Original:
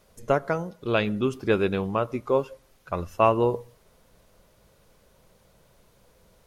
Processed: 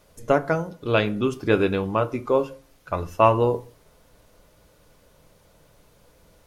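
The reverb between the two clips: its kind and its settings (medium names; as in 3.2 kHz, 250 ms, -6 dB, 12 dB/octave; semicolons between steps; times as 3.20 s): FDN reverb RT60 0.3 s, low-frequency decay 1.3×, high-frequency decay 0.75×, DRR 9 dB; trim +2.5 dB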